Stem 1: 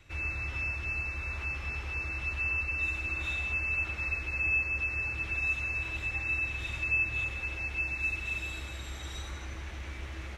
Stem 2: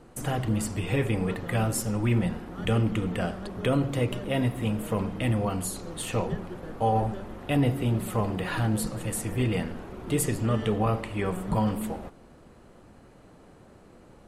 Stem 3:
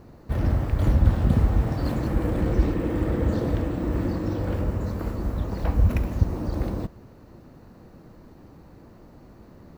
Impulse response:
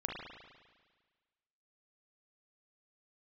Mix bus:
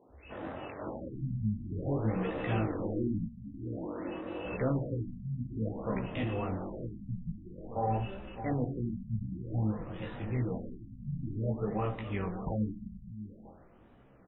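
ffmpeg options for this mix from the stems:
-filter_complex "[0:a]afwtdn=0.0224,volume=0.178[s0];[1:a]adelay=950,volume=0.631,asplit=3[s1][s2][s3];[s1]atrim=end=3.29,asetpts=PTS-STARTPTS,afade=t=out:st=3.286:d=0.004:c=hsin[s4];[s2]atrim=start=3.29:end=4.45,asetpts=PTS-STARTPTS,volume=0[s5];[s3]atrim=start=4.45,asetpts=PTS-STARTPTS,afade=t=in:d=0.004:c=hsin[s6];[s4][s5][s6]concat=n=3:v=0:a=1,asplit=2[s7][s8];[s8]volume=0.251[s9];[2:a]highpass=410,adynamicsmooth=sensitivity=6:basefreq=1400,volume=0.794[s10];[s9]aecho=0:1:603:1[s11];[s0][s7][s10][s11]amix=inputs=4:normalize=0,flanger=delay=15:depth=7.3:speed=0.85,afftfilt=real='re*lt(b*sr/1024,240*pow(4000/240,0.5+0.5*sin(2*PI*0.52*pts/sr)))':imag='im*lt(b*sr/1024,240*pow(4000/240,0.5+0.5*sin(2*PI*0.52*pts/sr)))':win_size=1024:overlap=0.75"

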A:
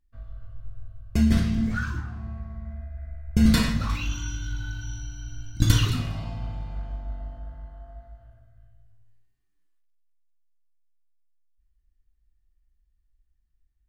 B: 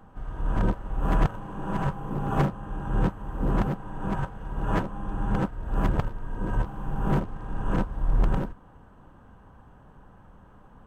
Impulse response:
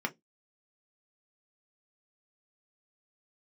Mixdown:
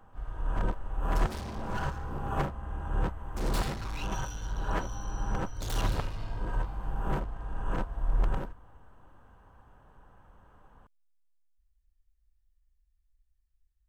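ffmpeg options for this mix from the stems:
-filter_complex "[0:a]aeval=exprs='0.133*(abs(mod(val(0)/0.133+3,4)-2)-1)':c=same,bass=f=250:g=3,treble=f=4000:g=3,volume=23.7,asoftclip=hard,volume=0.0422,volume=0.531[s0];[1:a]volume=0.668[s1];[s0][s1]amix=inputs=2:normalize=0,equalizer=f=190:w=0.77:g=-8"

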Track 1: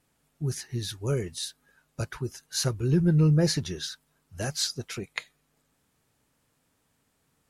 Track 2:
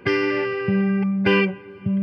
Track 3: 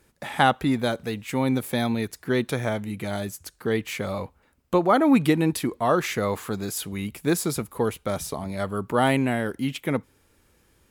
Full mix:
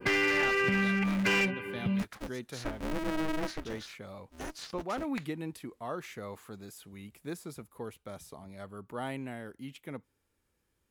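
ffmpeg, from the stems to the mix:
-filter_complex "[0:a]acontrast=53,aeval=exprs='val(0)*sgn(sin(2*PI*160*n/s))':c=same,volume=0.178[s0];[1:a]highshelf=f=2000:g=8.5,asoftclip=type=tanh:threshold=0.211,volume=0.944[s1];[2:a]volume=0.15[s2];[s0][s1][s2]amix=inputs=3:normalize=0,adynamicequalizer=threshold=0.0112:dfrequency=2900:dqfactor=0.72:tfrequency=2900:tqfactor=0.72:attack=5:release=100:ratio=0.375:range=3:mode=boostabove:tftype=bell,acrossover=split=1000|2800[s3][s4][s5];[s3]acompressor=threshold=0.0355:ratio=4[s6];[s4]acompressor=threshold=0.0501:ratio=4[s7];[s5]acompressor=threshold=0.00355:ratio=4[s8];[s6][s7][s8]amix=inputs=3:normalize=0,asoftclip=type=hard:threshold=0.0708"

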